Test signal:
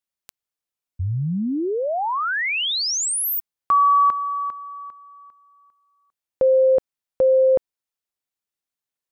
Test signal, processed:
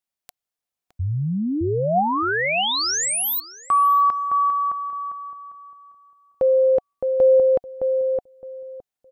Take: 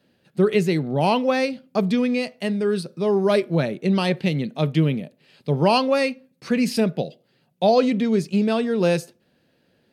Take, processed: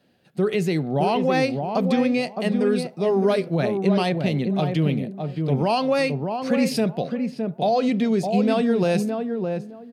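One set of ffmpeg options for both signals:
-filter_complex "[0:a]equalizer=f=730:t=o:w=0.21:g=7,alimiter=limit=0.224:level=0:latency=1:release=59,asplit=2[s0][s1];[s1]adelay=614,lowpass=f=980:p=1,volume=0.631,asplit=2[s2][s3];[s3]adelay=614,lowpass=f=980:p=1,volume=0.21,asplit=2[s4][s5];[s5]adelay=614,lowpass=f=980:p=1,volume=0.21[s6];[s2][s4][s6]amix=inputs=3:normalize=0[s7];[s0][s7]amix=inputs=2:normalize=0"

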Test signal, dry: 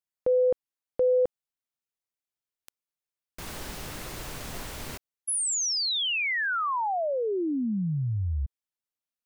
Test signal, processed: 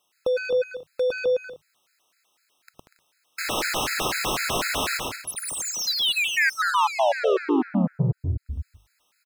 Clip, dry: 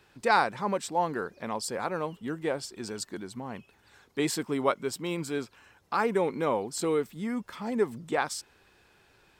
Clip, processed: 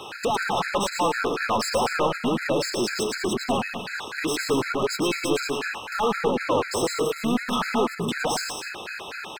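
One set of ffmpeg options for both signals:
-filter_complex "[0:a]bandreject=f=50:t=h:w=6,bandreject=f=100:t=h:w=6,bandreject=f=150:t=h:w=6,alimiter=limit=0.0891:level=0:latency=1:release=293,acompressor=threshold=0.0224:ratio=10:attack=33:release=455:detection=peak,asplit=2[s0][s1];[s1]highpass=f=720:p=1,volume=39.8,asoftclip=type=tanh:threshold=0.0944[s2];[s0][s2]amix=inputs=2:normalize=0,lowpass=f=3700:p=1,volume=0.501,asplit=2[s3][s4];[s4]aecho=0:1:110|187|240.9|278.6|305:0.631|0.398|0.251|0.158|0.1[s5];[s3][s5]amix=inputs=2:normalize=0,afftfilt=real='re*gt(sin(2*PI*4*pts/sr)*(1-2*mod(floor(b*sr/1024/1300),2)),0)':imag='im*gt(sin(2*PI*4*pts/sr)*(1-2*mod(floor(b*sr/1024/1300),2)),0)':win_size=1024:overlap=0.75,volume=1.78"

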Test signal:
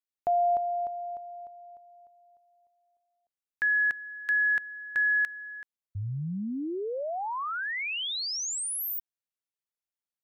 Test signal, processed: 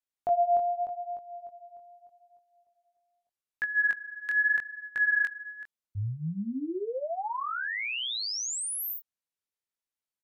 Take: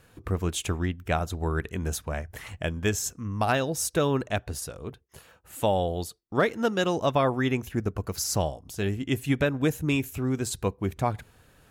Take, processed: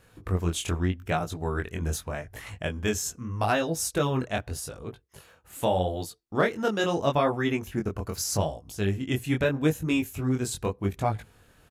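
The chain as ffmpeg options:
-af "aresample=32000,aresample=44100,flanger=delay=18:depth=6.5:speed=0.81,volume=1.33"

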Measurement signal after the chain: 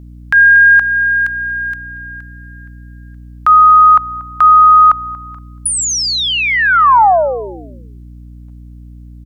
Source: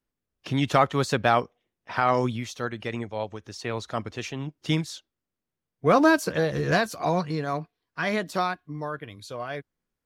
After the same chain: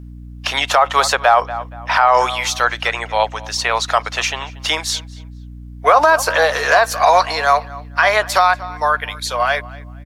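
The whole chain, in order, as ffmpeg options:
-filter_complex "[0:a]highpass=f=700:w=0.5412,highpass=f=700:w=1.3066,acrossover=split=1300[s0][s1];[s1]acompressor=threshold=0.0158:ratio=6[s2];[s0][s2]amix=inputs=2:normalize=0,aeval=exprs='val(0)+0.00224*(sin(2*PI*60*n/s)+sin(2*PI*2*60*n/s)/2+sin(2*PI*3*60*n/s)/3+sin(2*PI*4*60*n/s)/4+sin(2*PI*5*60*n/s)/5)':c=same,asplit=2[s3][s4];[s4]adelay=235,lowpass=f=3800:p=1,volume=0.1,asplit=2[s5][s6];[s6]adelay=235,lowpass=f=3800:p=1,volume=0.3[s7];[s3][s5][s7]amix=inputs=3:normalize=0,alimiter=level_in=11.2:limit=0.891:release=50:level=0:latency=1,volume=0.891"

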